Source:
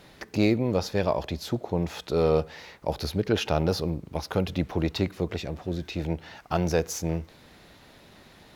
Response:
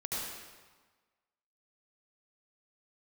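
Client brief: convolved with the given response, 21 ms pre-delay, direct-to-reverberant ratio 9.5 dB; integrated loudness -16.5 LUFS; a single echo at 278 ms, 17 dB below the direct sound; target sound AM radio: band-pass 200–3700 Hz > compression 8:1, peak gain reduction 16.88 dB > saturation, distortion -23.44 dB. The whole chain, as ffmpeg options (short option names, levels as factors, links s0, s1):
-filter_complex "[0:a]aecho=1:1:278:0.141,asplit=2[s0][s1];[1:a]atrim=start_sample=2205,adelay=21[s2];[s1][s2]afir=irnorm=-1:irlink=0,volume=0.211[s3];[s0][s3]amix=inputs=2:normalize=0,highpass=200,lowpass=3700,acompressor=threshold=0.0178:ratio=8,asoftclip=threshold=0.0562,volume=16.8"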